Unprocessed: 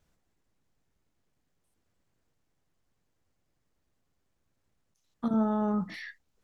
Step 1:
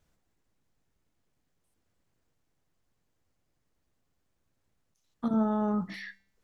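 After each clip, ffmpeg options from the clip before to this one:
ffmpeg -i in.wav -af "bandreject=frequency=195.7:width_type=h:width=4,bandreject=frequency=391.4:width_type=h:width=4,bandreject=frequency=587.1:width_type=h:width=4,bandreject=frequency=782.8:width_type=h:width=4,bandreject=frequency=978.5:width_type=h:width=4,bandreject=frequency=1174.2:width_type=h:width=4,bandreject=frequency=1369.9:width_type=h:width=4,bandreject=frequency=1565.6:width_type=h:width=4,bandreject=frequency=1761.3:width_type=h:width=4,bandreject=frequency=1957:width_type=h:width=4,bandreject=frequency=2152.7:width_type=h:width=4,bandreject=frequency=2348.4:width_type=h:width=4,bandreject=frequency=2544.1:width_type=h:width=4,bandreject=frequency=2739.8:width_type=h:width=4,bandreject=frequency=2935.5:width_type=h:width=4,bandreject=frequency=3131.2:width_type=h:width=4,bandreject=frequency=3326.9:width_type=h:width=4,bandreject=frequency=3522.6:width_type=h:width=4,bandreject=frequency=3718.3:width_type=h:width=4,bandreject=frequency=3914:width_type=h:width=4,bandreject=frequency=4109.7:width_type=h:width=4,bandreject=frequency=4305.4:width_type=h:width=4,bandreject=frequency=4501.1:width_type=h:width=4,bandreject=frequency=4696.8:width_type=h:width=4,bandreject=frequency=4892.5:width_type=h:width=4,bandreject=frequency=5088.2:width_type=h:width=4,bandreject=frequency=5283.9:width_type=h:width=4,bandreject=frequency=5479.6:width_type=h:width=4,bandreject=frequency=5675.3:width_type=h:width=4" out.wav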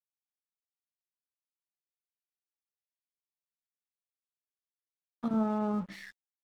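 ffmpeg -i in.wav -af "aeval=exprs='sgn(val(0))*max(abs(val(0))-0.00376,0)':channel_layout=same,volume=-2dB" out.wav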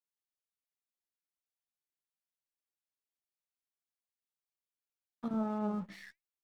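ffmpeg -i in.wav -af "flanger=delay=1.3:depth=4.2:regen=89:speed=0.78:shape=triangular" out.wav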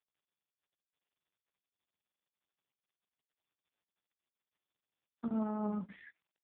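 ffmpeg -i in.wav -ar 8000 -c:a libopencore_amrnb -b:a 4750 out.amr

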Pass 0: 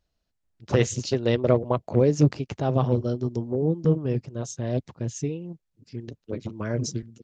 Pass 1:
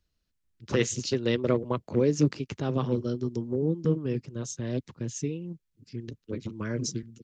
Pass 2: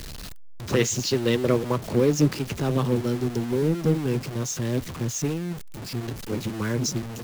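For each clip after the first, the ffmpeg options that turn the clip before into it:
ffmpeg -i in.wav -filter_complex "[0:a]equalizer=frequency=700:width_type=o:width=0.82:gain=-11.5,acrossover=split=170[link_01][link_02];[link_01]acompressor=threshold=-37dB:ratio=6[link_03];[link_03][link_02]amix=inputs=2:normalize=0" out.wav
ffmpeg -i in.wav -filter_complex "[0:a]aeval=exprs='val(0)+0.5*0.0299*sgn(val(0))':channel_layout=same,asplit=2[link_01][link_02];[link_02]acrusher=bits=4:mix=0:aa=0.000001,volume=-11dB[link_03];[link_01][link_03]amix=inputs=2:normalize=0" out.wav

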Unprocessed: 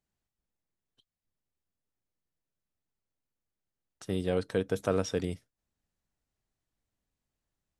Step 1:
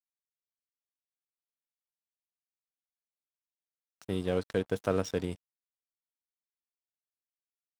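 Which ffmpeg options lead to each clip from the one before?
ffmpeg -i in.wav -af "aeval=exprs='sgn(val(0))*max(abs(val(0))-0.00501,0)':channel_layout=same" out.wav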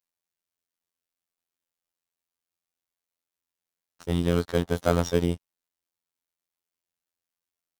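ffmpeg -i in.wav -filter_complex "[0:a]afftfilt=real='hypot(re,im)*cos(PI*b)':imag='0':win_size=2048:overlap=0.75,asplit=2[link_01][link_02];[link_02]acrusher=samples=16:mix=1:aa=0.000001,volume=-9dB[link_03];[link_01][link_03]amix=inputs=2:normalize=0,volume=8.5dB" out.wav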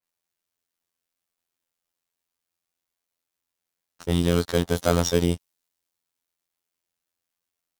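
ffmpeg -i in.wav -filter_complex "[0:a]asplit=2[link_01][link_02];[link_02]alimiter=limit=-15dB:level=0:latency=1,volume=-1dB[link_03];[link_01][link_03]amix=inputs=2:normalize=0,adynamicequalizer=threshold=0.00631:dfrequency=3000:dqfactor=0.7:tfrequency=3000:tqfactor=0.7:attack=5:release=100:ratio=0.375:range=3:mode=boostabove:tftype=highshelf,volume=-1dB" out.wav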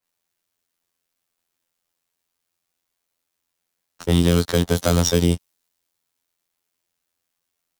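ffmpeg -i in.wav -filter_complex "[0:a]acrossover=split=230|3000[link_01][link_02][link_03];[link_02]acompressor=threshold=-24dB:ratio=6[link_04];[link_01][link_04][link_03]amix=inputs=3:normalize=0,volume=6dB" out.wav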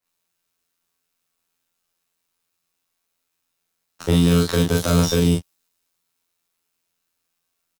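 ffmpeg -i in.wav -filter_complex "[0:a]alimiter=limit=-9.5dB:level=0:latency=1:release=19,asplit=2[link_01][link_02];[link_02]aecho=0:1:24|42:0.562|0.708[link_03];[link_01][link_03]amix=inputs=2:normalize=0" out.wav

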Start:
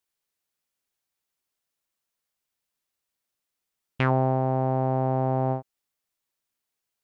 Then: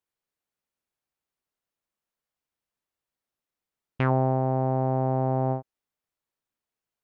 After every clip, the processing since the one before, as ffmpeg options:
ffmpeg -i in.wav -af "highshelf=frequency=2400:gain=-10" out.wav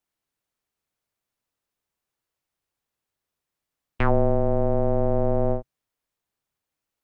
ffmpeg -i in.wav -af "afreqshift=-150,volume=4dB" out.wav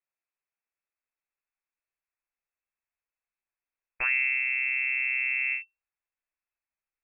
ffmpeg -i in.wav -af "lowpass=frequency=2300:width_type=q:width=0.5098,lowpass=frequency=2300:width_type=q:width=0.6013,lowpass=frequency=2300:width_type=q:width=0.9,lowpass=frequency=2300:width_type=q:width=2.563,afreqshift=-2700,asubboost=boost=10.5:cutoff=59,volume=-7.5dB" out.wav

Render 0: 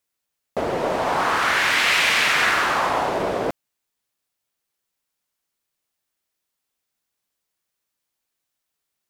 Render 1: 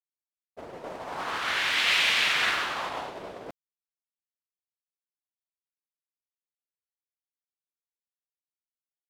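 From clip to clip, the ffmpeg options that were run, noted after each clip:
ffmpeg -i in.wav -af "agate=range=-33dB:threshold=-14dB:ratio=3:detection=peak,adynamicequalizer=threshold=0.01:dfrequency=3400:dqfactor=1.2:tfrequency=3400:tqfactor=1.2:attack=5:release=100:ratio=0.375:range=4:mode=boostabove:tftype=bell,volume=-6dB" out.wav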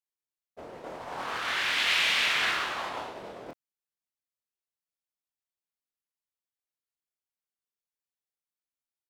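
ffmpeg -i in.wav -filter_complex "[0:a]asplit=2[link_01][link_02];[link_02]adelay=25,volume=-5dB[link_03];[link_01][link_03]amix=inputs=2:normalize=0,volume=-3dB" out.wav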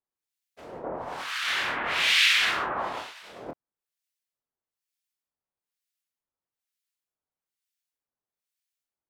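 ffmpeg -i in.wav -filter_complex "[0:a]acrossover=split=1500[link_01][link_02];[link_01]aeval=exprs='val(0)*(1-1/2+1/2*cos(2*PI*1.1*n/s))':channel_layout=same[link_03];[link_02]aeval=exprs='val(0)*(1-1/2-1/2*cos(2*PI*1.1*n/s))':channel_layout=same[link_04];[link_03][link_04]amix=inputs=2:normalize=0,volume=7.5dB" out.wav

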